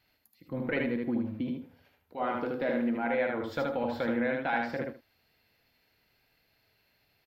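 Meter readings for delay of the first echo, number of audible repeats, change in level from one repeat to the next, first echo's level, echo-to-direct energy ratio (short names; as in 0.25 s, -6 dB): 76 ms, 2, -14.5 dB, -3.5 dB, -3.5 dB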